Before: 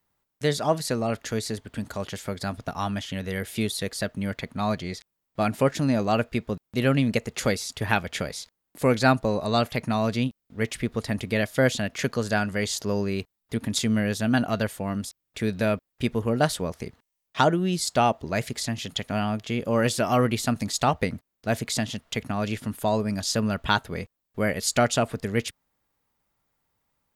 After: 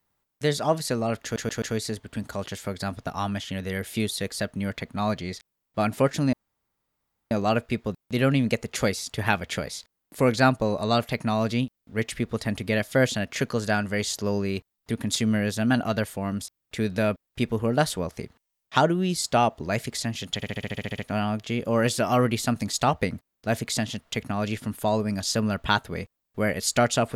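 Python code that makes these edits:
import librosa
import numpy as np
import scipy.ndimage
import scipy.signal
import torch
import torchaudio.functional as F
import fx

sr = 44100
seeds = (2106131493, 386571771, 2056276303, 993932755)

y = fx.edit(x, sr, fx.stutter(start_s=1.23, slice_s=0.13, count=4),
    fx.insert_room_tone(at_s=5.94, length_s=0.98),
    fx.stutter(start_s=18.98, slice_s=0.07, count=10), tone=tone)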